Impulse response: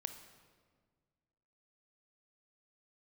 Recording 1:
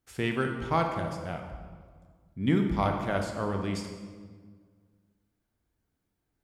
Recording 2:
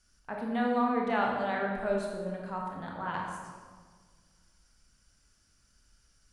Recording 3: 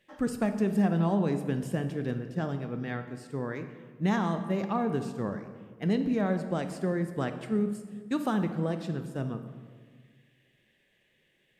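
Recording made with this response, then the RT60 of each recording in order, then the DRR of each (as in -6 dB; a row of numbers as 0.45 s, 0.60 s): 3; 1.6 s, 1.6 s, 1.7 s; 3.5 dB, -1.0 dB, 8.0 dB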